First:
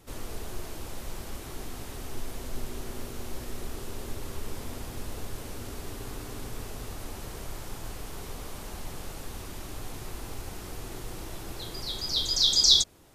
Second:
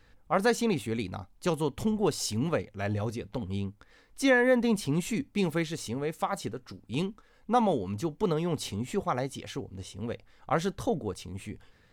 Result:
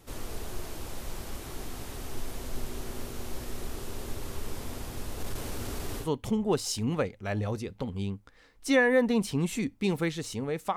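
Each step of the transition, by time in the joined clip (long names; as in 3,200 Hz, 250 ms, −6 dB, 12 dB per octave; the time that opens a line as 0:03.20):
first
0:05.20–0:06.10: leveller curve on the samples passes 1
0:06.04: continue with second from 0:01.58, crossfade 0.12 s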